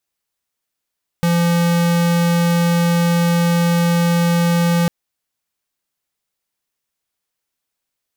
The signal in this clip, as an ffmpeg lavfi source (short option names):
-f lavfi -i "aevalsrc='0.178*(2*lt(mod(171*t,1),0.5)-1)':d=3.65:s=44100"